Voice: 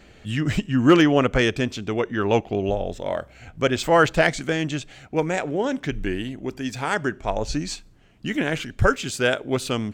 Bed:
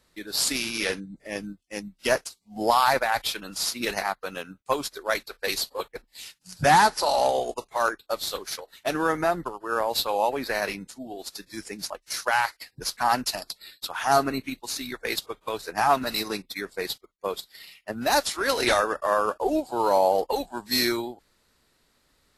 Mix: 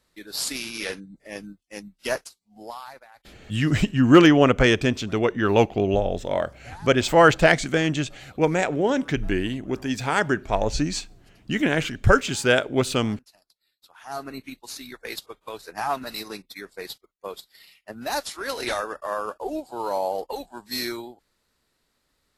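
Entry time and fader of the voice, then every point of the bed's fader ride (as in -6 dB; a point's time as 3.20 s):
3.25 s, +2.0 dB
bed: 2.21 s -3.5 dB
3.14 s -27.5 dB
13.67 s -27.5 dB
14.41 s -5.5 dB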